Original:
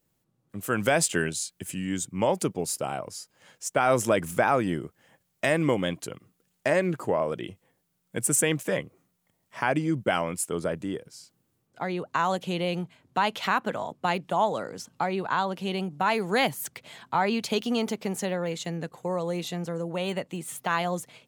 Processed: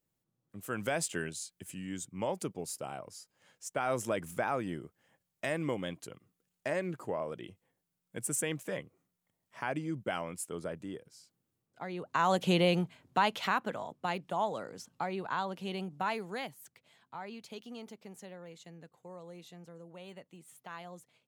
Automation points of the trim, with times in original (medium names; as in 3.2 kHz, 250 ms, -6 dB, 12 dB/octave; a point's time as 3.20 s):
11.90 s -10 dB
12.50 s +3 dB
13.84 s -8 dB
16.04 s -8 dB
16.57 s -19 dB